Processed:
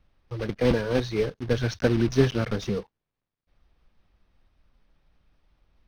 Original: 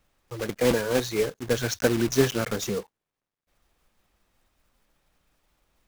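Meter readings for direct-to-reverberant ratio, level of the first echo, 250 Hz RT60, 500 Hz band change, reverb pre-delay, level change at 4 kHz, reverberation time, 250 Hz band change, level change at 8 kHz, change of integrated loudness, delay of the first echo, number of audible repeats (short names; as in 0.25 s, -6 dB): none, none, none, -1.0 dB, none, -3.5 dB, none, +1.5 dB, -12.0 dB, 0.0 dB, none, none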